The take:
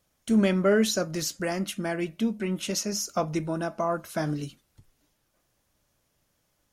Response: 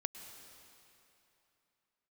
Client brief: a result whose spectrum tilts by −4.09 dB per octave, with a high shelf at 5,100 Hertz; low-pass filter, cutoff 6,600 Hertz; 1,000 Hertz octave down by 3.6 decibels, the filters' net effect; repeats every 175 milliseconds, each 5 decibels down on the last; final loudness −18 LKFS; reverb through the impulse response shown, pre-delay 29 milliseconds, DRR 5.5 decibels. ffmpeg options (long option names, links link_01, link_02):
-filter_complex "[0:a]lowpass=6600,equalizer=frequency=1000:width_type=o:gain=-6,highshelf=frequency=5100:gain=8,aecho=1:1:175|350|525|700|875|1050|1225:0.562|0.315|0.176|0.0988|0.0553|0.031|0.0173,asplit=2[link_01][link_02];[1:a]atrim=start_sample=2205,adelay=29[link_03];[link_02][link_03]afir=irnorm=-1:irlink=0,volume=-5dB[link_04];[link_01][link_04]amix=inputs=2:normalize=0,volume=7.5dB"